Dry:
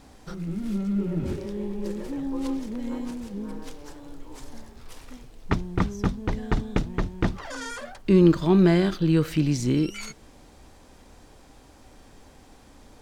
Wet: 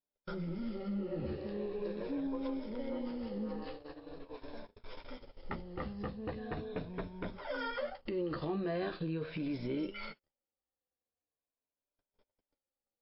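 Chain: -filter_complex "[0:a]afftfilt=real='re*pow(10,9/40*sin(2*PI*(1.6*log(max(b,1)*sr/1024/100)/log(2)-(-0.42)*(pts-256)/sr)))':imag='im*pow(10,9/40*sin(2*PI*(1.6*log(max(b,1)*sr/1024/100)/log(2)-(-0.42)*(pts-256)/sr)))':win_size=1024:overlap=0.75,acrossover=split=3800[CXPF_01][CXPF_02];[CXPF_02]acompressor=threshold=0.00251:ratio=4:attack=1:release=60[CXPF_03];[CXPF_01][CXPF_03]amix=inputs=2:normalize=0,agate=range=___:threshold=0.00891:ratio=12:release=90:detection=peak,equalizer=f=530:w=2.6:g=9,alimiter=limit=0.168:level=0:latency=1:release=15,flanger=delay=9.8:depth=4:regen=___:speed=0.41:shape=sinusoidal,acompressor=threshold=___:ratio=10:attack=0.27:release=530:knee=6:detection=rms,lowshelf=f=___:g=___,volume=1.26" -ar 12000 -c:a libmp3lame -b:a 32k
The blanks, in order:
0.00447, -22, 0.0355, 210, -7.5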